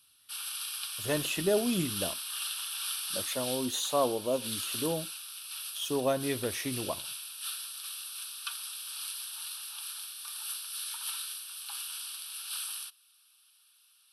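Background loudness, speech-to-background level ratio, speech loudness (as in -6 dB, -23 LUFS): -36.0 LUFS, 3.0 dB, -33.0 LUFS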